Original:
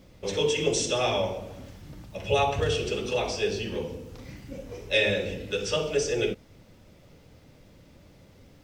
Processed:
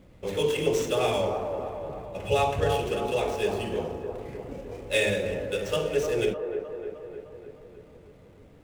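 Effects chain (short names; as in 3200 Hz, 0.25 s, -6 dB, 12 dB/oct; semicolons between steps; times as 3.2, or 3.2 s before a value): median filter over 9 samples; bell 7300 Hz +2 dB; band-limited delay 0.305 s, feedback 60%, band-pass 680 Hz, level -5 dB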